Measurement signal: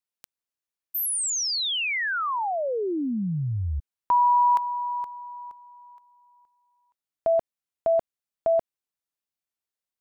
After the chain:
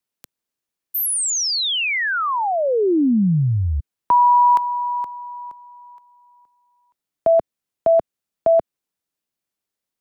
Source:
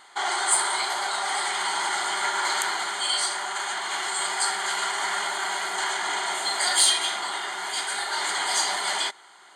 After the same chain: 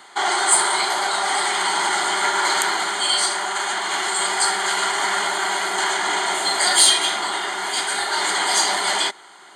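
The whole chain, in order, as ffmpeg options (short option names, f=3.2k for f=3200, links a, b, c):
-filter_complex "[0:a]acrossover=split=120|460|4200[a][b][c][d];[b]acontrast=50[e];[a][e][c][d]amix=inputs=4:normalize=0,volume=5.5dB"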